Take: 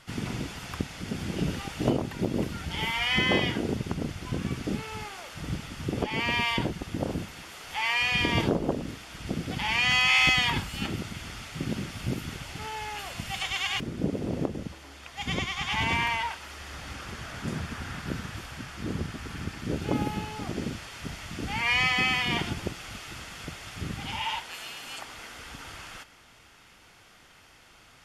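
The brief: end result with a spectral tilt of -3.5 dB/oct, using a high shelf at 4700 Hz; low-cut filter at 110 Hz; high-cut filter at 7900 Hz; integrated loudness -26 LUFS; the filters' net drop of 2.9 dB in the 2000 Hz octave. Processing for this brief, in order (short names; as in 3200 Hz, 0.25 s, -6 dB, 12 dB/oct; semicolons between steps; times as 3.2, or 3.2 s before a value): HPF 110 Hz; LPF 7900 Hz; bell 2000 Hz -5.5 dB; high shelf 4700 Hz +9 dB; gain +4.5 dB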